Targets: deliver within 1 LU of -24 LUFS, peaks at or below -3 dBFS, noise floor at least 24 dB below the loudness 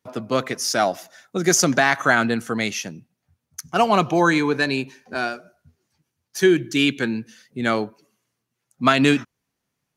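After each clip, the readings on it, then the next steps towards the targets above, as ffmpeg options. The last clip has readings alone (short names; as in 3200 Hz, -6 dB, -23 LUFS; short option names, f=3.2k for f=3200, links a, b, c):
loudness -20.5 LUFS; peak -2.5 dBFS; loudness target -24.0 LUFS
-> -af "volume=-3.5dB"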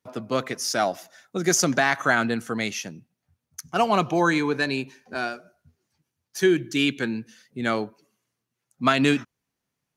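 loudness -24.0 LUFS; peak -6.0 dBFS; noise floor -83 dBFS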